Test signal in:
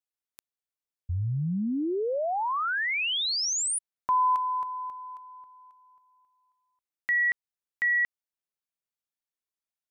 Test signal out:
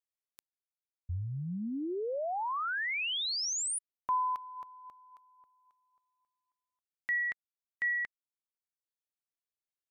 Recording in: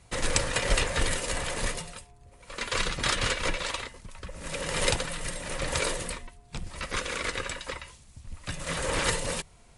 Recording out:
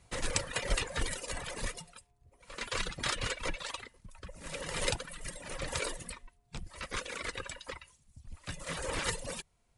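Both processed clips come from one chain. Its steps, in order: reverb removal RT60 1.1 s; trim -5.5 dB

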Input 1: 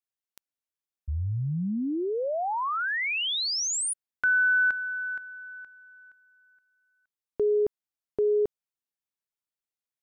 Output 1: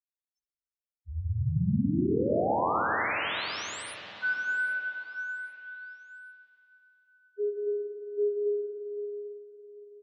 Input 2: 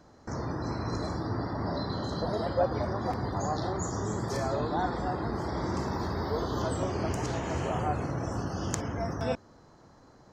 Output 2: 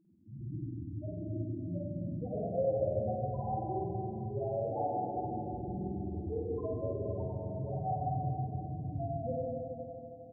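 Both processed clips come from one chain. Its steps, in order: high-pass 71 Hz 6 dB/octave; loudest bins only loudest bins 1; on a send: feedback delay 792 ms, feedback 38%, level -19 dB; on the sum: spring tank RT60 3.1 s, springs 46/51 ms, chirp 55 ms, DRR -6 dB

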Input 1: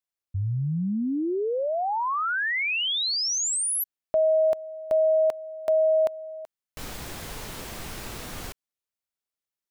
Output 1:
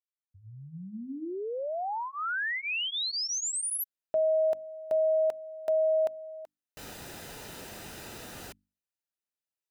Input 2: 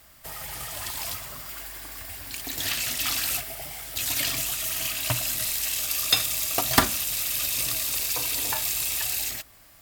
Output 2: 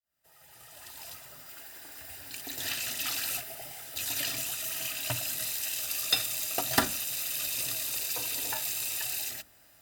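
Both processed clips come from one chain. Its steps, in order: fade-in on the opening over 2.17 s; hum notches 50/100/150/200/250/300 Hz; comb of notches 1.1 kHz; trim -4.5 dB

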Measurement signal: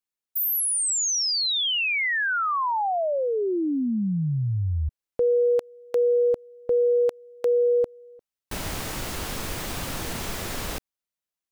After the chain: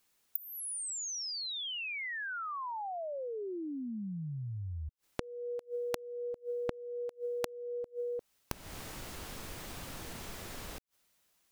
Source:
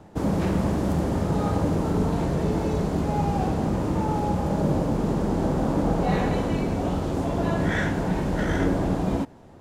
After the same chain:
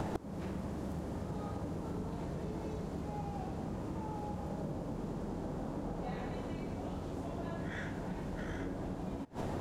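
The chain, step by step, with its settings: inverted gate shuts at -26 dBFS, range -30 dB; compression 4:1, threshold -53 dBFS; trim +17 dB

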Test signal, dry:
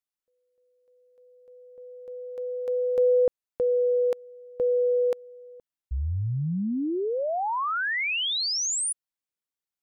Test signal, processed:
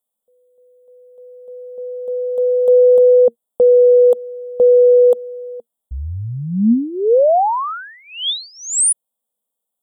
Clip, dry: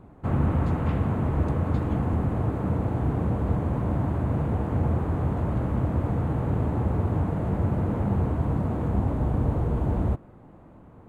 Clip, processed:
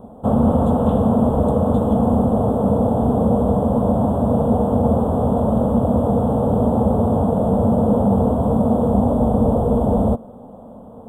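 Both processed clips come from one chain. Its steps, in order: FFT filter 160 Hz 0 dB, 230 Hz +15 dB, 330 Hz -4 dB, 470 Hz +14 dB, 720 Hz +12 dB, 1.3 kHz 0 dB, 2.2 kHz -24 dB, 3.4 kHz +8 dB, 5 kHz -22 dB, 8.1 kHz +11 dB; loudness maximiser +8 dB; trim -5 dB

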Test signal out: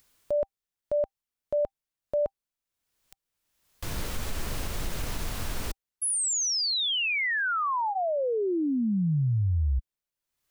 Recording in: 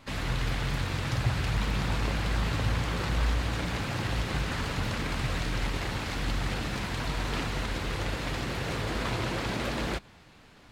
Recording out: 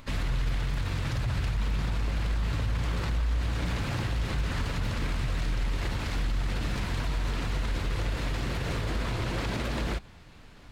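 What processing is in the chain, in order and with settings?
bass shelf 83 Hz +12 dB; band-stop 790 Hz, Q 26; peak limiter -21.5 dBFS; upward compressor, threshold -47 dBFS

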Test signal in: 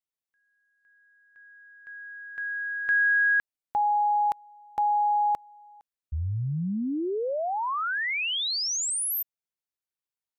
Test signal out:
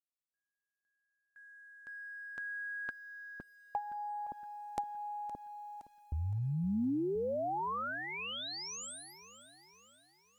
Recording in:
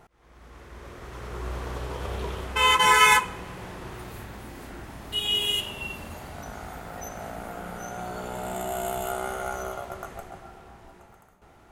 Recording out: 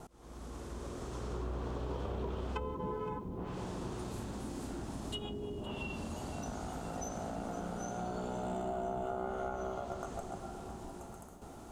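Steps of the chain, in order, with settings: low-pass that closes with the level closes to 380 Hz, closed at -21.5 dBFS; gate with hold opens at -56 dBFS, range -18 dB; ten-band graphic EQ 250 Hz +6 dB, 2 kHz -11 dB, 8 kHz +7 dB; compression 2:1, threshold -47 dBFS; bit-crushed delay 516 ms, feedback 55%, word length 11-bit, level -15 dB; trim +4 dB

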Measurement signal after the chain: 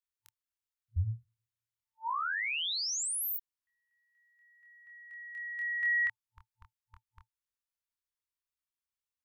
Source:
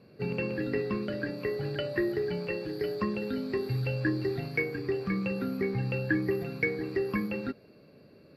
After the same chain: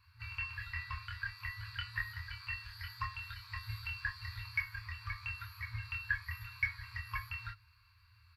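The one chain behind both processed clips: FFT band-reject 110–890 Hz; bass shelf 410 Hz +8 dB; doubling 25 ms -3 dB; trim -3.5 dB

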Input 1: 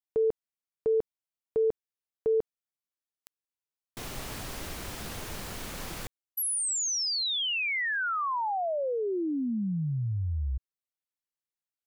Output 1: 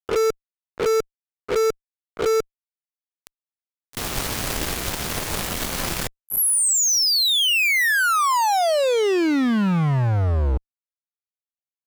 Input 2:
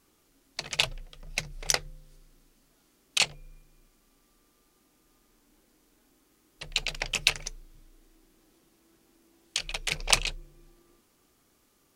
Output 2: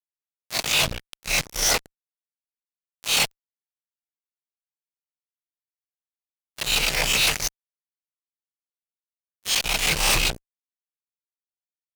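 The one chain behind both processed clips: reverse spectral sustain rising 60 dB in 0.32 s; fuzz box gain 40 dB, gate -36 dBFS; trim -4 dB

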